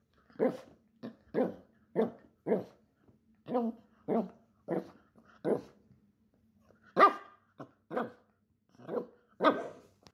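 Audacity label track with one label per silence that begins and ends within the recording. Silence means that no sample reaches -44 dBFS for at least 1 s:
5.640000	6.970000	silence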